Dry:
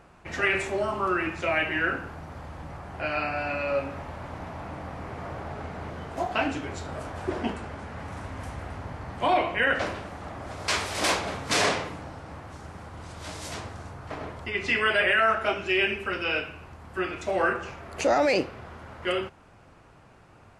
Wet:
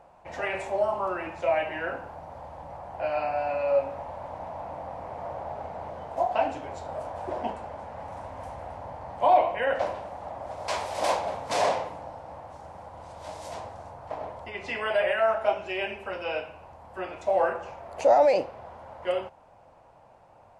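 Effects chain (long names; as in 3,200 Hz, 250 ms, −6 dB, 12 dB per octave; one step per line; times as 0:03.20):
flat-topped bell 710 Hz +13 dB 1.2 octaves
level −8.5 dB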